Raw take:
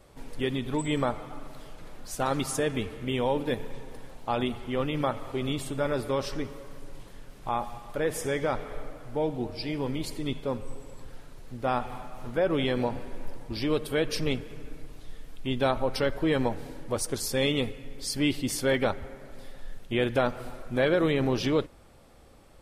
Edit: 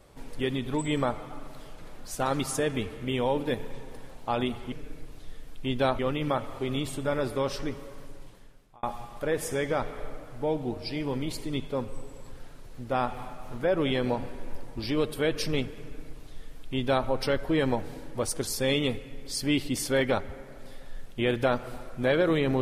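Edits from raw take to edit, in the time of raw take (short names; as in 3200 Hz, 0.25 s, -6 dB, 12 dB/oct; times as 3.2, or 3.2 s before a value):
6.72–7.56 fade out
14.53–15.8 copy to 4.72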